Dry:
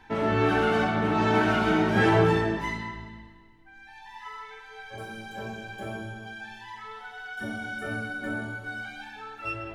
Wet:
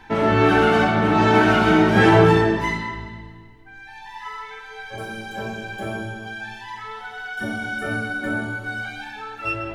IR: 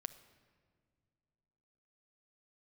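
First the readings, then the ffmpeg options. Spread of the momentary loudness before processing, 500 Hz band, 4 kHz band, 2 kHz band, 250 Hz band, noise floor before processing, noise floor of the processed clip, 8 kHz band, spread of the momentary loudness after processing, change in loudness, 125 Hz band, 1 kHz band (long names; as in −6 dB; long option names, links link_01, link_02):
19 LU, +7.0 dB, +7.5 dB, +7.0 dB, +7.5 dB, −51 dBFS, −42 dBFS, +7.0 dB, 19 LU, +7.5 dB, +7.0 dB, +7.5 dB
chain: -filter_complex "[0:a]asplit=2[link_01][link_02];[1:a]atrim=start_sample=2205,asetrate=48510,aresample=44100[link_03];[link_02][link_03]afir=irnorm=-1:irlink=0,volume=6.5dB[link_04];[link_01][link_04]amix=inputs=2:normalize=0"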